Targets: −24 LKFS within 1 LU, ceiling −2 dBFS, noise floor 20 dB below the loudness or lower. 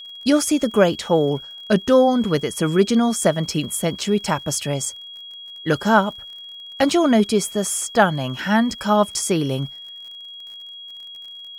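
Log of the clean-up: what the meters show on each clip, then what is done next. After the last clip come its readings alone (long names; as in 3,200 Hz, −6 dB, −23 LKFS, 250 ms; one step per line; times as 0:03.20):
crackle rate 40 per second; interfering tone 3,300 Hz; level of the tone −35 dBFS; integrated loudness −19.5 LKFS; sample peak −2.0 dBFS; target loudness −24.0 LKFS
→ click removal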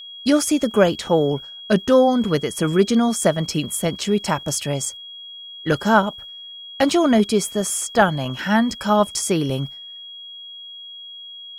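crackle rate 0.35 per second; interfering tone 3,300 Hz; level of the tone −35 dBFS
→ notch filter 3,300 Hz, Q 30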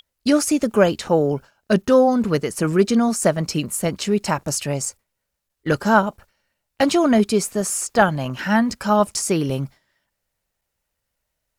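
interfering tone none found; integrated loudness −20.0 LKFS; sample peak −2.0 dBFS; target loudness −24.0 LKFS
→ level −4 dB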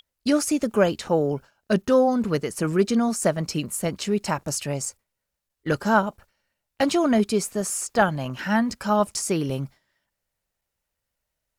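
integrated loudness −24.0 LKFS; sample peak −6.0 dBFS; background noise floor −82 dBFS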